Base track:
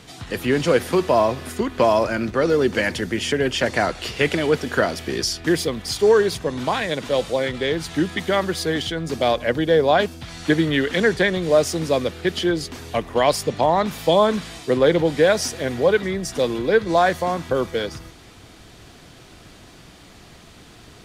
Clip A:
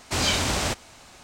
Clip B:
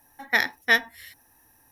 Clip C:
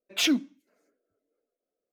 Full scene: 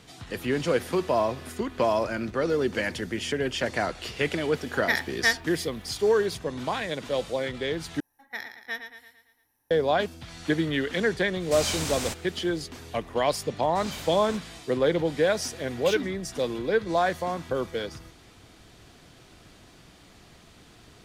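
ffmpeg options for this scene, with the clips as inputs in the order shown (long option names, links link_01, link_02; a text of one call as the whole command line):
ffmpeg -i bed.wav -i cue0.wav -i cue1.wav -i cue2.wav -filter_complex "[2:a]asplit=2[link_01][link_02];[1:a]asplit=2[link_03][link_04];[0:a]volume=-7dB[link_05];[link_02]aecho=1:1:113|226|339|452|565|678:0.376|0.188|0.094|0.047|0.0235|0.0117[link_06];[link_03]highshelf=frequency=7200:gain=10[link_07];[3:a]acompressor=threshold=-26dB:ratio=6:attack=3.2:release=140:knee=1:detection=peak[link_08];[link_05]asplit=2[link_09][link_10];[link_09]atrim=end=8.004[link_11];[link_06]atrim=end=1.71,asetpts=PTS-STARTPTS,volume=-15dB[link_12];[link_10]atrim=start=9.706[link_13];[link_01]atrim=end=1.71,asetpts=PTS-STARTPTS,volume=-4dB,afade=type=in:duration=0.004:curve=hsin,afade=type=out:start_time=1.706:duration=0.004:curve=hsin,adelay=4550[link_14];[link_07]atrim=end=1.23,asetpts=PTS-STARTPTS,volume=-8.5dB,afade=type=in:duration=0.004:curve=hsin,afade=type=out:start_time=1.226:duration=0.004:curve=hsin,adelay=11400[link_15];[link_04]atrim=end=1.23,asetpts=PTS-STARTPTS,volume=-16dB,afade=type=in:duration=0.004:curve=hsin,afade=type=out:start_time=1.226:duration=0.004:curve=hsin,adelay=601524S[link_16];[link_08]atrim=end=1.92,asetpts=PTS-STARTPTS,volume=-3dB,afade=type=in:duration=0.004:curve=hsin,afade=type=out:start_time=1.916:duration=0.004:curve=hsin,adelay=15680[link_17];[link_11][link_12]acrossfade=duration=0.004:curve1=hsin:curve2=hsin[link_18];[link_18][link_13]acrossfade=duration=0.004:curve1=hsin:curve2=hsin[link_19];[link_19][link_14][link_15][link_16][link_17]amix=inputs=5:normalize=0" out.wav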